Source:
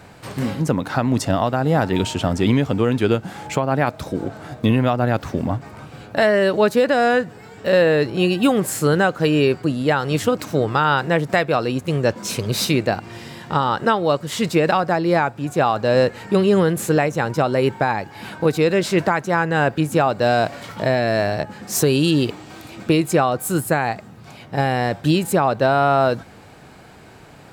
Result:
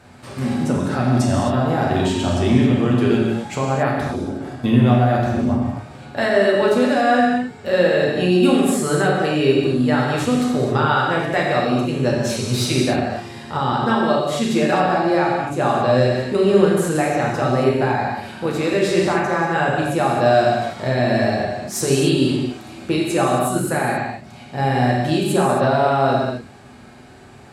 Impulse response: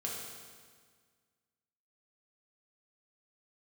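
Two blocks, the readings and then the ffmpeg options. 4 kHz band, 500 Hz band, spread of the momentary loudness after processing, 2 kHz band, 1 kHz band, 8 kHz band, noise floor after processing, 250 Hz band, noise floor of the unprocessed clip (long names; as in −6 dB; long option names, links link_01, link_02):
0.0 dB, +0.5 dB, 8 LU, 0.0 dB, +1.0 dB, 0.0 dB, −41 dBFS, +2.0 dB, −43 dBFS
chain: -filter_complex "[1:a]atrim=start_sample=2205,atrim=end_sample=6615,asetrate=23373,aresample=44100[link_01];[0:a][link_01]afir=irnorm=-1:irlink=0,volume=-5.5dB"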